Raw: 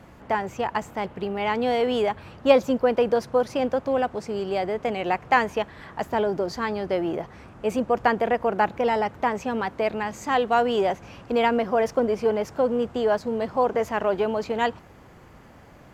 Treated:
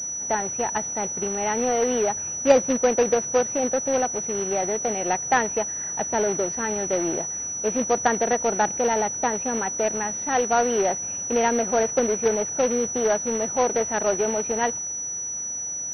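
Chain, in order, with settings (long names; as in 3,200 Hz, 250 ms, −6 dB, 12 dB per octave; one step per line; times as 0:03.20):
notch comb filter 1,100 Hz
log-companded quantiser 4 bits
switching amplifier with a slow clock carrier 5,900 Hz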